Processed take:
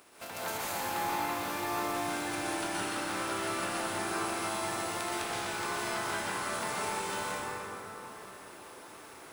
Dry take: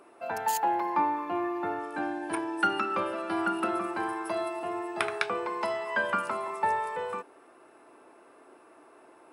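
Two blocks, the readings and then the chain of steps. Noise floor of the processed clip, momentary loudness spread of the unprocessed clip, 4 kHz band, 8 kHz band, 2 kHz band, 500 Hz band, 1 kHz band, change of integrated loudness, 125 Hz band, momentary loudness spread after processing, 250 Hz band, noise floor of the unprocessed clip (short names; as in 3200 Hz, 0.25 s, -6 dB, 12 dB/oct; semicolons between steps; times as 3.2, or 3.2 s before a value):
-50 dBFS, 6 LU, +5.0 dB, +8.0 dB, -1.5 dB, -4.5 dB, -5.0 dB, -3.5 dB, +5.0 dB, 13 LU, -4.5 dB, -57 dBFS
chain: spectral contrast lowered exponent 0.38; compressor 6:1, threshold -37 dBFS, peak gain reduction 15.5 dB; plate-style reverb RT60 4 s, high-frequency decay 0.45×, pre-delay 0.11 s, DRR -9.5 dB; gain -4 dB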